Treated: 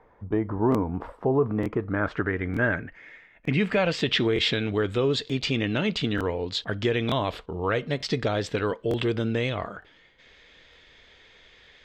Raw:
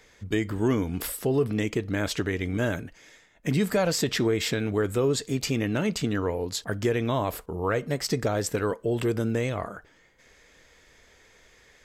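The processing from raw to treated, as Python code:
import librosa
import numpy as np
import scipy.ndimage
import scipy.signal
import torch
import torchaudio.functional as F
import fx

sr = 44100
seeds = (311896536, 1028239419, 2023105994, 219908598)

y = fx.filter_sweep_lowpass(x, sr, from_hz=950.0, to_hz=3500.0, start_s=1.25, end_s=4.31, q=2.8)
y = fx.buffer_crackle(y, sr, first_s=0.7, period_s=0.91, block=1024, kind='repeat')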